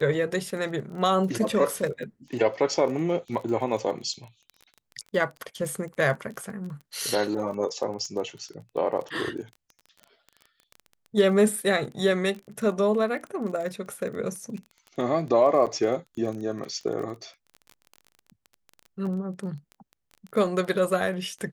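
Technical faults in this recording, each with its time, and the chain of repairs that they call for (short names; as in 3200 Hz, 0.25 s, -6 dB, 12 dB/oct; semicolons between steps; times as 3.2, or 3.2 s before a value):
crackle 20/s -34 dBFS
15.66–15.67 gap 7.2 ms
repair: de-click; interpolate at 15.66, 7.2 ms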